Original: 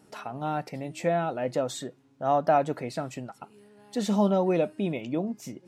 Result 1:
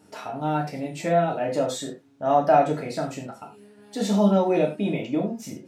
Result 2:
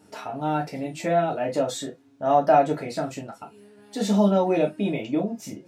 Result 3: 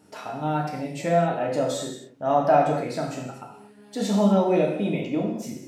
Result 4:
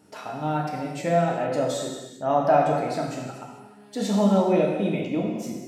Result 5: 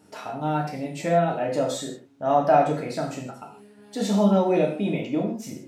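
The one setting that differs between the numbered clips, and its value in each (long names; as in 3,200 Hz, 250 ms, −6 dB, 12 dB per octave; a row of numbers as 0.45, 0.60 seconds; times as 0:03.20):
reverb whose tail is shaped and stops, gate: 130, 80, 290, 470, 190 milliseconds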